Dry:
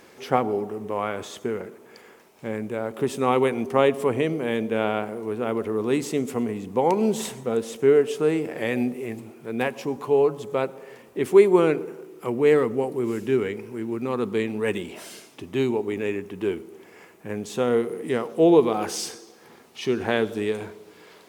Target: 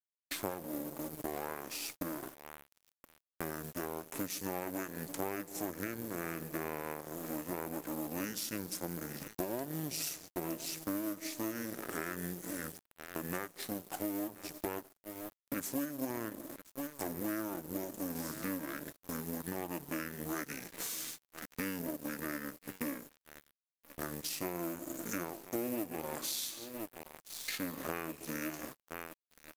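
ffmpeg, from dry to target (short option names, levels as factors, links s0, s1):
-filter_complex "[0:a]aeval=exprs='if(lt(val(0),0),0.251*val(0),val(0))':c=same,acrusher=bits=8:mode=log:mix=0:aa=0.000001,highpass=57,aemphasis=mode=production:type=bsi,asetrate=31752,aresample=44100,agate=range=0.141:threshold=0.01:ratio=16:detection=peak,asplit=2[s0][s1];[s1]aecho=0:1:1019:0.0944[s2];[s0][s2]amix=inputs=2:normalize=0,aeval=exprs='sgn(val(0))*max(abs(val(0))-0.00562,0)':c=same,acompressor=threshold=0.00708:ratio=6,volume=2.11"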